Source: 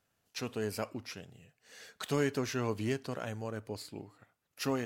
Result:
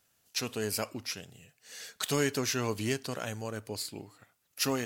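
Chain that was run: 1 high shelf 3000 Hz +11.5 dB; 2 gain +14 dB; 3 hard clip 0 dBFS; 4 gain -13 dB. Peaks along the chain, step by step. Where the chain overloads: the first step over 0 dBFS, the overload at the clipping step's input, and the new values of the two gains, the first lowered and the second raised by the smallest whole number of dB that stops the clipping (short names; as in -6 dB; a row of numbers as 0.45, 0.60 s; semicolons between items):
-16.0, -2.0, -2.0, -15.0 dBFS; no overload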